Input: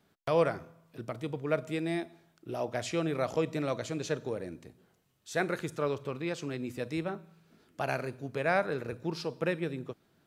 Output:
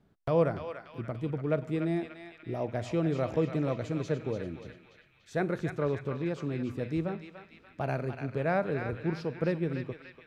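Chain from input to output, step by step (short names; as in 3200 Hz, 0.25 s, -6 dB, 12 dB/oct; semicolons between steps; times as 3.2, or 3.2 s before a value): tilt -3 dB/oct; on a send: narrowing echo 0.291 s, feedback 68%, band-pass 2600 Hz, level -4 dB; on the sum: gain -2.5 dB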